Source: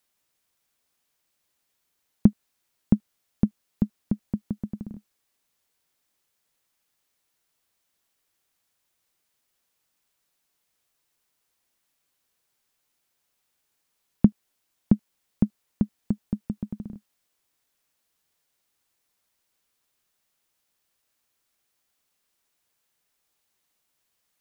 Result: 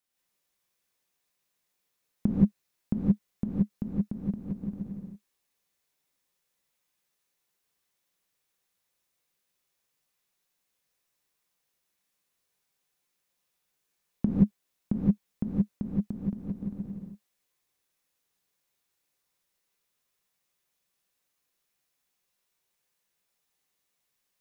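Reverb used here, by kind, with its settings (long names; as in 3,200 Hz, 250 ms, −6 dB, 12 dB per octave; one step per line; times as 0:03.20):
reverb whose tail is shaped and stops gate 200 ms rising, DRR −6 dB
level −10 dB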